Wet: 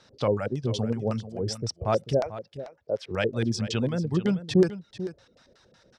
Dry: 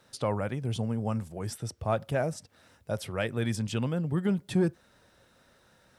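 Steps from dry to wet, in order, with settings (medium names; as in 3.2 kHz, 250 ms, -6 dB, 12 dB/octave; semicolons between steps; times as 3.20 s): 2.20–3.11 s: three-band isolator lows -15 dB, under 360 Hz, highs -14 dB, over 2.8 kHz; LFO low-pass square 5.4 Hz 470–5300 Hz; reverb removal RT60 0.68 s; on a send: delay 441 ms -13.5 dB; on the sum: trim +3 dB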